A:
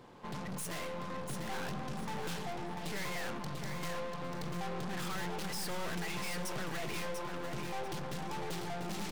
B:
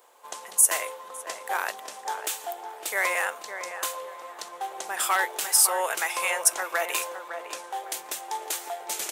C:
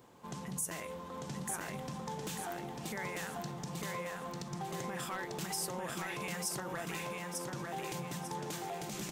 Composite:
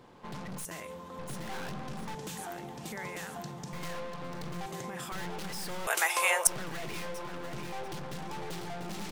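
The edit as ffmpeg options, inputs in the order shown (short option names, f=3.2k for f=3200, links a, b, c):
-filter_complex "[2:a]asplit=3[a][b][c];[0:a]asplit=5[d][e][f][g][h];[d]atrim=end=0.652[i];[a]atrim=start=0.648:end=1.192[j];[e]atrim=start=1.188:end=2.152[k];[b]atrim=start=2.148:end=3.732[l];[f]atrim=start=3.728:end=4.662[m];[c]atrim=start=4.658:end=5.122[n];[g]atrim=start=5.118:end=5.872[o];[1:a]atrim=start=5.868:end=6.472[p];[h]atrim=start=6.468[q];[i][j]acrossfade=d=0.004:c1=hsin:c2=hsin[r];[r][k]acrossfade=d=0.004:c1=hsin:c2=hsin[s];[s][l]acrossfade=d=0.004:c1=hsin:c2=hsin[t];[t][m]acrossfade=d=0.004:c1=hsin:c2=hsin[u];[u][n]acrossfade=d=0.004:c1=hsin:c2=hsin[v];[v][o]acrossfade=d=0.004:c1=hsin:c2=hsin[w];[w][p]acrossfade=d=0.004:c1=hsin:c2=hsin[x];[x][q]acrossfade=d=0.004:c1=hsin:c2=hsin"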